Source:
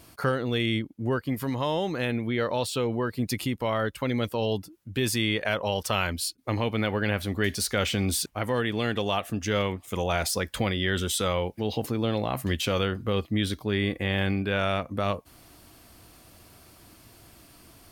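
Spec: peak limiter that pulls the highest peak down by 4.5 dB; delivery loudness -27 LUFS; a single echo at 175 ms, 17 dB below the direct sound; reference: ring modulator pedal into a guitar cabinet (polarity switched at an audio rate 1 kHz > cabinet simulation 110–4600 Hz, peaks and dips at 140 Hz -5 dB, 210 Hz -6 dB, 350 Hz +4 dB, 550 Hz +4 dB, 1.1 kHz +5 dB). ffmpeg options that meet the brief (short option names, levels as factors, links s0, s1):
-af "alimiter=limit=0.168:level=0:latency=1,aecho=1:1:175:0.141,aeval=exprs='val(0)*sgn(sin(2*PI*1000*n/s))':c=same,highpass=110,equalizer=f=140:t=q:w=4:g=-5,equalizer=f=210:t=q:w=4:g=-6,equalizer=f=350:t=q:w=4:g=4,equalizer=f=550:t=q:w=4:g=4,equalizer=f=1100:t=q:w=4:g=5,lowpass=f=4600:w=0.5412,lowpass=f=4600:w=1.3066,volume=0.891"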